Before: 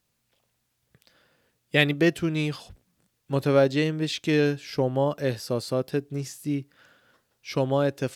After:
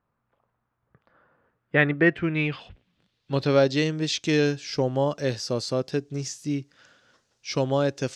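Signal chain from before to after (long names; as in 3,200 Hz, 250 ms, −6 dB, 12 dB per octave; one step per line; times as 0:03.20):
low-pass filter sweep 1,200 Hz → 6,200 Hz, 0:01.43–0:03.88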